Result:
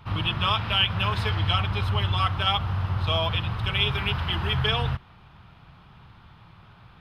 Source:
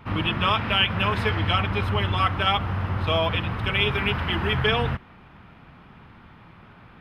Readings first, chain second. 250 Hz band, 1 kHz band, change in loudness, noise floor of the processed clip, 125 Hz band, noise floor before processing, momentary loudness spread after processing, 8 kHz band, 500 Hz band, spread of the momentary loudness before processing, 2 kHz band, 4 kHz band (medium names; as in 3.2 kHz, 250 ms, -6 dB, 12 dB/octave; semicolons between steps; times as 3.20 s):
-6.0 dB, -3.0 dB, -1.5 dB, -52 dBFS, +0.5 dB, -50 dBFS, 4 LU, no reading, -6.0 dB, 4 LU, -4.0 dB, +1.0 dB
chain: ten-band graphic EQ 125 Hz +3 dB, 250 Hz -10 dB, 500 Hz -5 dB, 2 kHz -7 dB, 4 kHz +5 dB